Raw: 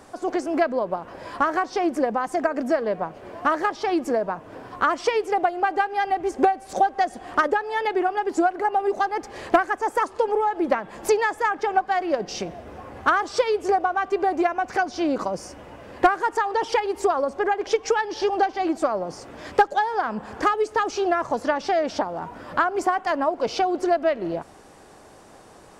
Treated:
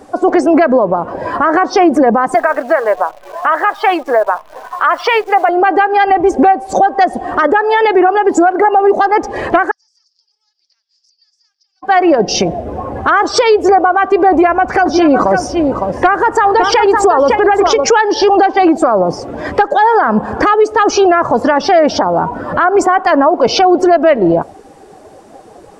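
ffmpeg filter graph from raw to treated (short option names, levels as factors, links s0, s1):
-filter_complex "[0:a]asettb=1/sr,asplit=3[s0][s1][s2];[s0]atrim=end=2.344[s3];[s1]atrim=start=2.34:end=5.49,asetpts=PTS-STARTPTS,afade=t=in:d=0.004:c=qsin,afade=t=out:st=3.146:d=0.004:c=qsin,highpass=750,lowpass=3900,acrusher=bits=8:dc=4:mix=0:aa=0.000001[s4];[s2]atrim=start=5.486[s5];[s3][s4]acrossfade=d=0.004:c1=hsin:c2=qsin[s6];[s6][s5]acrossfade=d=0.004:c1=qsin:c2=hsin,asettb=1/sr,asplit=3[s7][s8][s9];[s7]atrim=end=9.714[s10];[s8]atrim=start=9.71:end=11.83,asetpts=PTS-STARTPTS,afade=t=in:d=0.004:c=qsin,afade=t=out:st=2.116:d=0.004:c=qsin,asuperpass=centerf=5100:order=4:qfactor=5.1,acompressor=threshold=0.00158:ratio=10:attack=3.2:release=140:knee=1:detection=peak[s11];[s9]atrim=start=11.826[s12];[s10][s11]acrossfade=d=0.004:c1=hsin:c2=qsin[s13];[s13][s12]acrossfade=d=0.004:c1=qsin:c2=hsin,asettb=1/sr,asplit=3[s14][s15][s16];[s14]atrim=end=14.304[s17];[s15]atrim=start=14.3:end=17.89,asetpts=PTS-STARTPTS,afade=t=in:d=0.004:c=qsin,afade=t=out:st=3.586:d=0.004:c=qsin,aeval=exprs='val(0)+0.00282*(sin(2*PI*60*n/s)+sin(2*PI*2*60*n/s)/2+sin(2*PI*3*60*n/s)/3+sin(2*PI*4*60*n/s)/4+sin(2*PI*5*60*n/s)/5)':c=same,aecho=1:1:557:0.376,atrim=end_sample=158319[s18];[s16]atrim=start=17.886[s19];[s17][s18]acrossfade=d=0.004:c1=hsin:c2=qsin[s20];[s20][s19]acrossfade=d=0.004:c1=qsin:c2=hsin,afftdn=nr=15:nf=-39,alimiter=level_in=9.44:limit=0.891:release=50:level=0:latency=1,volume=0.891"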